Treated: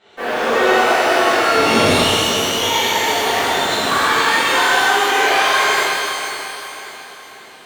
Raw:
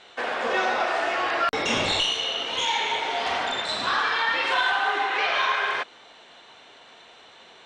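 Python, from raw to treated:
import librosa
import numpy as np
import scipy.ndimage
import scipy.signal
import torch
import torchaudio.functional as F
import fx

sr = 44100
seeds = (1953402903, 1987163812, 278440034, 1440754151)

p1 = scipy.signal.sosfilt(scipy.signal.butter(2, 54.0, 'highpass', fs=sr, output='sos'), x)
p2 = fx.peak_eq(p1, sr, hz=300.0, db=4.5, octaves=1.1)
p3 = fx.quant_dither(p2, sr, seeds[0], bits=6, dither='none')
p4 = p2 + F.gain(torch.from_numpy(p3), -2.0).numpy()
p5 = fx.tilt_eq(p4, sr, slope=-1.5)
p6 = p5 + fx.echo_feedback(p5, sr, ms=542, feedback_pct=44, wet_db=-11, dry=0)
p7 = fx.rev_shimmer(p6, sr, seeds[1], rt60_s=1.6, semitones=12, shimmer_db=-8, drr_db=-11.5)
y = F.gain(torch.from_numpy(p7), -8.5).numpy()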